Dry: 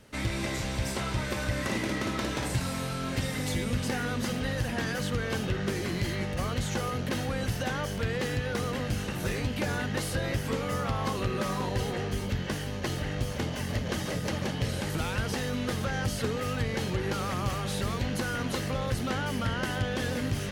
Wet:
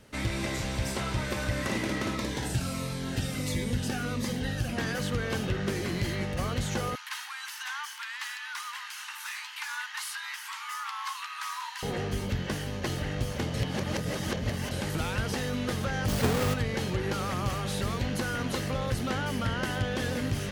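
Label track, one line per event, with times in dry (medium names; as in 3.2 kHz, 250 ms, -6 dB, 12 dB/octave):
2.150000	4.780000	Shepard-style phaser falling 1.5 Hz
6.950000	11.830000	steep high-pass 880 Hz 96 dB/octave
13.540000	14.710000	reverse
16.080000	16.540000	square wave that keeps the level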